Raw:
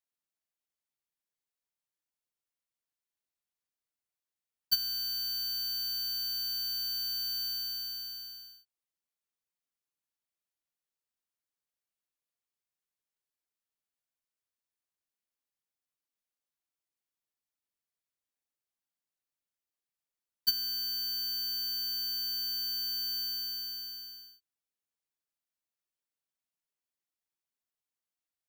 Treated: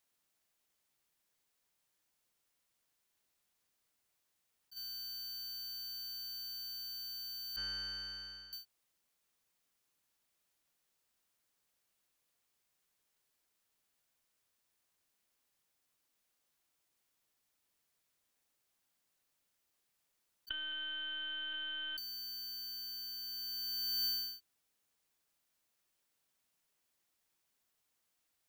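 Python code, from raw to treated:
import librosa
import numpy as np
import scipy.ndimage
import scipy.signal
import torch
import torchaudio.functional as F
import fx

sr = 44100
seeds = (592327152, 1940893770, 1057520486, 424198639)

y = fx.lowpass(x, sr, hz=2000.0, slope=12, at=(7.56, 8.53))
y = fx.lpc_vocoder(y, sr, seeds[0], excitation='pitch_kept', order=8, at=(20.49, 21.98))
y = fx.over_compress(y, sr, threshold_db=-45.0, ratio=-1.0)
y = y * 10.0 ** (2.5 / 20.0)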